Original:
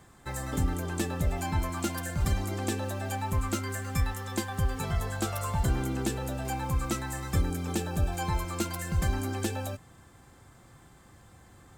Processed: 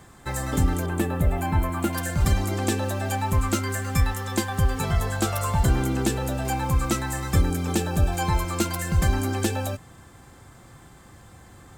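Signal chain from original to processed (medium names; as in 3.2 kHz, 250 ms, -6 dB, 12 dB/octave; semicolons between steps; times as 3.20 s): 0.86–1.93 s: peaking EQ 5.4 kHz -13.5 dB 1.3 oct; trim +6.5 dB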